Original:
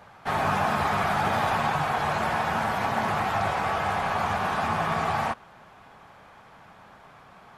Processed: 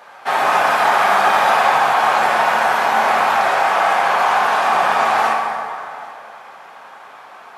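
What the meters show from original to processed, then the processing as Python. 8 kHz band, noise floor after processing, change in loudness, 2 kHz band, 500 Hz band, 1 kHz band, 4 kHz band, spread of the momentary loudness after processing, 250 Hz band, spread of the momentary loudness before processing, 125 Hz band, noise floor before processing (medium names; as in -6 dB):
+11.0 dB, -40 dBFS, +11.0 dB, +12.0 dB, +10.0 dB, +11.5 dB, +11.0 dB, 9 LU, -0.5 dB, 2 LU, no reading, -52 dBFS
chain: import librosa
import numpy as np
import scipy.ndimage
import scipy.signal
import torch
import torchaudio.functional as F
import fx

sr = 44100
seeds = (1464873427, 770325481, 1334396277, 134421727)

p1 = scipy.signal.sosfilt(scipy.signal.butter(2, 480.0, 'highpass', fs=sr, output='sos'), x)
p2 = p1 + fx.echo_single(p1, sr, ms=782, db=-22.5, dry=0)
p3 = fx.rev_plate(p2, sr, seeds[0], rt60_s=2.5, hf_ratio=0.6, predelay_ms=0, drr_db=-0.5)
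y = p3 * librosa.db_to_amplitude(8.5)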